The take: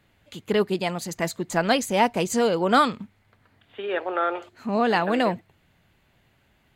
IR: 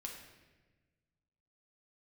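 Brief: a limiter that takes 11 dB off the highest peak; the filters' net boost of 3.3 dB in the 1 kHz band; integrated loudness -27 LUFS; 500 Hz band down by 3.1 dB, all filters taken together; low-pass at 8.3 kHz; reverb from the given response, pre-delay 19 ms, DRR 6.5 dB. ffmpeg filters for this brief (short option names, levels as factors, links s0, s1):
-filter_complex "[0:a]lowpass=8300,equalizer=f=500:t=o:g=-6,equalizer=f=1000:t=o:g=6.5,alimiter=limit=0.168:level=0:latency=1,asplit=2[s0][s1];[1:a]atrim=start_sample=2205,adelay=19[s2];[s1][s2]afir=irnorm=-1:irlink=0,volume=0.631[s3];[s0][s3]amix=inputs=2:normalize=0,volume=0.944"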